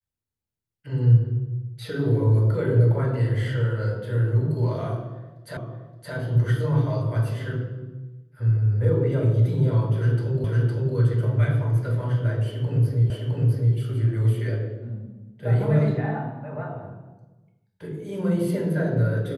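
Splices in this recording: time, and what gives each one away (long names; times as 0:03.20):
0:05.57: the same again, the last 0.57 s
0:10.44: the same again, the last 0.51 s
0:13.10: the same again, the last 0.66 s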